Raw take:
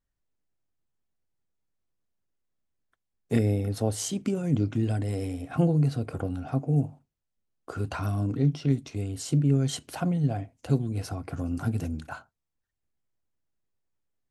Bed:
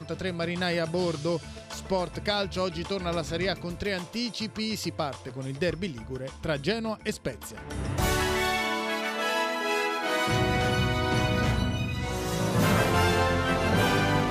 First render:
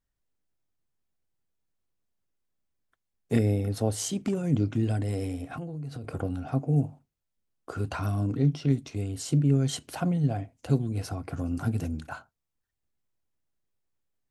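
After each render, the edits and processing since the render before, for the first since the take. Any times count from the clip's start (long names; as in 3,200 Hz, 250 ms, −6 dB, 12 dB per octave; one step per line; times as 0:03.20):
0:04.01–0:04.44: hard clipping −21 dBFS
0:05.44–0:06.04: downward compressor 10 to 1, threshold −33 dBFS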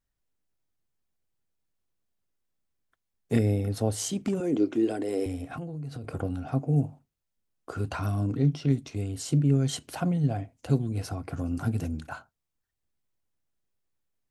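0:04.40–0:05.26: high-pass with resonance 360 Hz, resonance Q 3.1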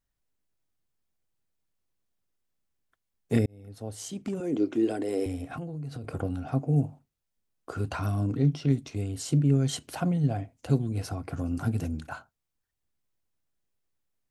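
0:03.46–0:04.86: fade in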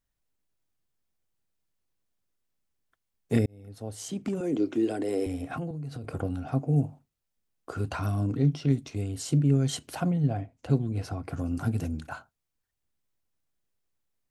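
0:04.08–0:05.71: multiband upward and downward compressor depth 40%
0:10.10–0:11.23: high-shelf EQ 4,800 Hz → 7,600 Hz −11 dB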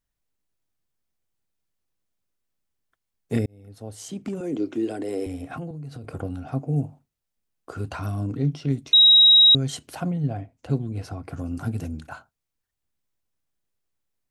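0:08.93–0:09.55: beep over 3,820 Hz −10 dBFS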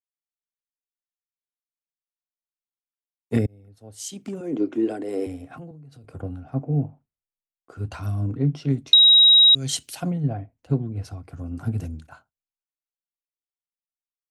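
downward compressor 10 to 1, threshold −19 dBFS, peak gain reduction 7.5 dB
multiband upward and downward expander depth 100%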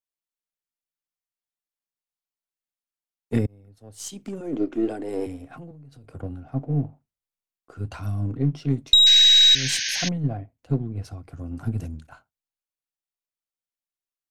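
gain on one half-wave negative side −3 dB
0:09.06–0:10.09: sound drawn into the spectrogram noise 1,500–6,700 Hz −27 dBFS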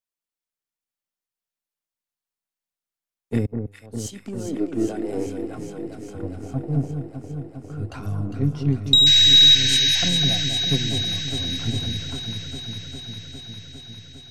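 delay that swaps between a low-pass and a high-pass 202 ms, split 1,300 Hz, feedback 87%, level −6 dB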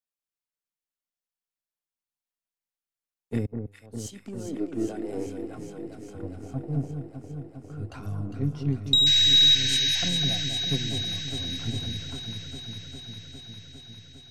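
level −5.5 dB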